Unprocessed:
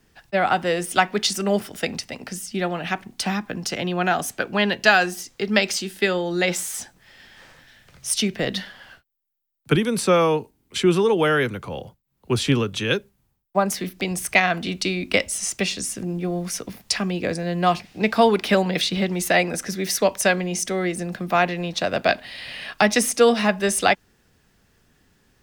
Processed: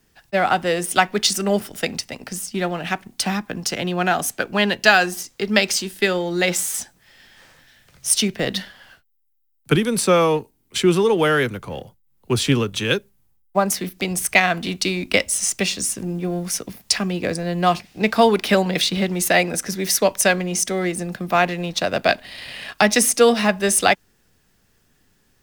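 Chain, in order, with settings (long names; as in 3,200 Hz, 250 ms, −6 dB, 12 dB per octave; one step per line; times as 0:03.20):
in parallel at −4.5 dB: slack as between gear wheels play −28.5 dBFS
on the sum: high-shelf EQ 6,200 Hz +7 dB
level −2.5 dB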